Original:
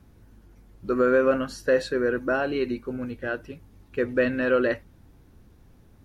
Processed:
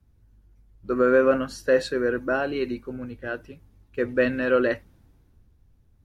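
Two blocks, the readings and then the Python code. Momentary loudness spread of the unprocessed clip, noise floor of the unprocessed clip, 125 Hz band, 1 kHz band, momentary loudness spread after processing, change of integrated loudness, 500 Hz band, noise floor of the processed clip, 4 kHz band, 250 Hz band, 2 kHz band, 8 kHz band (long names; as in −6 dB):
12 LU, −55 dBFS, −0.5 dB, +0.5 dB, 14 LU, +1.0 dB, +1.0 dB, −61 dBFS, +1.0 dB, 0.0 dB, +0.5 dB, can't be measured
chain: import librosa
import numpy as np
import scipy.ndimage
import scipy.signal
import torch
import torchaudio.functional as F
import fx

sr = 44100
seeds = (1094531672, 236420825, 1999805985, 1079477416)

y = fx.band_widen(x, sr, depth_pct=40)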